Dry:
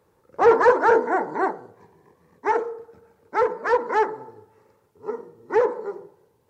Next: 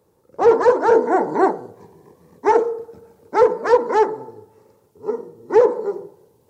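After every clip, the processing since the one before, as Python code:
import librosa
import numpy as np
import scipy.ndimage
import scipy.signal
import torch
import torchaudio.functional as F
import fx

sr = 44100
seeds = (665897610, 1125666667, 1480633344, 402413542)

y = fx.low_shelf(x, sr, hz=89.0, db=-6.5)
y = fx.rider(y, sr, range_db=4, speed_s=0.5)
y = fx.peak_eq(y, sr, hz=1700.0, db=-10.0, octaves=1.9)
y = F.gain(torch.from_numpy(y), 8.5).numpy()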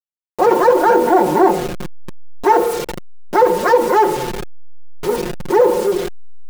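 y = fx.delta_hold(x, sr, step_db=-33.5)
y = y + 0.84 * np.pad(y, (int(5.6 * sr / 1000.0), 0))[:len(y)]
y = fx.env_flatten(y, sr, amount_pct=50)
y = F.gain(torch.from_numpy(y), -1.0).numpy()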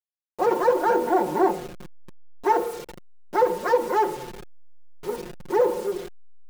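y = fx.upward_expand(x, sr, threshold_db=-25.0, expansion=1.5)
y = F.gain(torch.from_numpy(y), -7.0).numpy()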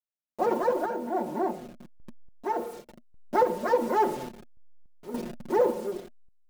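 y = fx.small_body(x, sr, hz=(240.0, 620.0), ring_ms=70, db=16)
y = fx.tremolo_random(y, sr, seeds[0], hz=3.5, depth_pct=85)
y = fx.end_taper(y, sr, db_per_s=310.0)
y = F.gain(torch.from_numpy(y), -3.0).numpy()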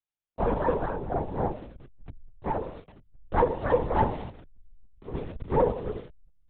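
y = fx.lpc_vocoder(x, sr, seeds[1], excitation='whisper', order=10)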